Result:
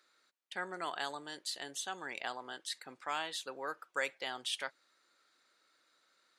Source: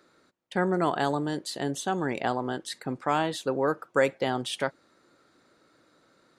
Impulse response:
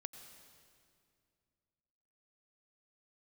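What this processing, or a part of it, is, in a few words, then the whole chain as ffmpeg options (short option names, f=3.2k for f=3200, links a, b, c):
filter by subtraction: -filter_complex "[0:a]asplit=2[a][b];[b]lowpass=2.9k,volume=-1[c];[a][c]amix=inputs=2:normalize=0,volume=-5dB"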